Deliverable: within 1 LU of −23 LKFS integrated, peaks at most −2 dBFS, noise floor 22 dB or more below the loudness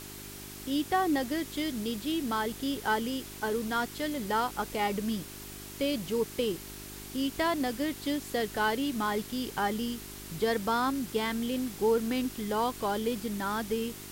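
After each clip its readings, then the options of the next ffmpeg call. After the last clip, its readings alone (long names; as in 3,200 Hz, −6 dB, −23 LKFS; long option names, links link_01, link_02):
mains hum 50 Hz; hum harmonics up to 400 Hz; level of the hum −47 dBFS; background noise floor −44 dBFS; target noise floor −54 dBFS; integrated loudness −31.5 LKFS; sample peak −16.5 dBFS; target loudness −23.0 LKFS
→ -af "bandreject=frequency=50:width_type=h:width=4,bandreject=frequency=100:width_type=h:width=4,bandreject=frequency=150:width_type=h:width=4,bandreject=frequency=200:width_type=h:width=4,bandreject=frequency=250:width_type=h:width=4,bandreject=frequency=300:width_type=h:width=4,bandreject=frequency=350:width_type=h:width=4,bandreject=frequency=400:width_type=h:width=4"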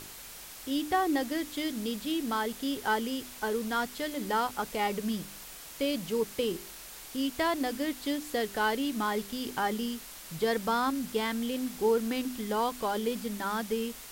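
mains hum none found; background noise floor −46 dBFS; target noise floor −54 dBFS
→ -af "afftdn=noise_reduction=8:noise_floor=-46"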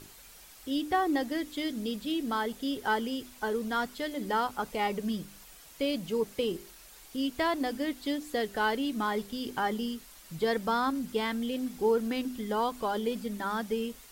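background noise floor −53 dBFS; target noise floor −54 dBFS
→ -af "afftdn=noise_reduction=6:noise_floor=-53"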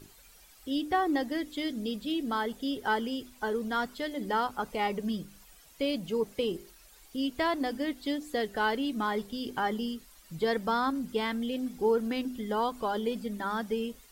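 background noise floor −57 dBFS; integrated loudness −31.5 LKFS; sample peak −17.0 dBFS; target loudness −23.0 LKFS
→ -af "volume=8.5dB"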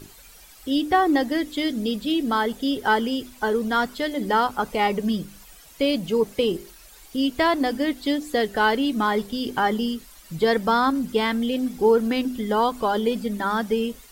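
integrated loudness −23.0 LKFS; sample peak −8.5 dBFS; background noise floor −48 dBFS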